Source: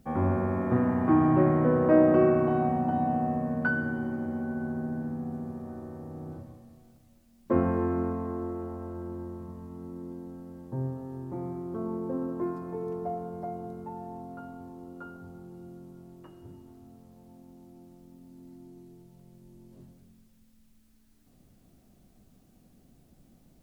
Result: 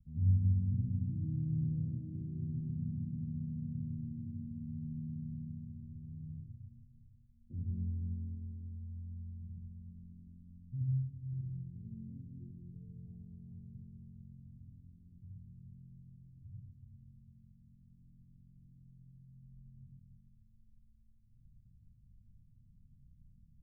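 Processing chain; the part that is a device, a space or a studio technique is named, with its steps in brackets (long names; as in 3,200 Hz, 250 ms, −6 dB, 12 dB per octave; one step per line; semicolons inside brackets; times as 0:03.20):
club heard from the street (brickwall limiter −19 dBFS, peak gain reduction 10 dB; low-pass filter 130 Hz 24 dB per octave; convolution reverb RT60 0.55 s, pre-delay 62 ms, DRR −3 dB)
level −1.5 dB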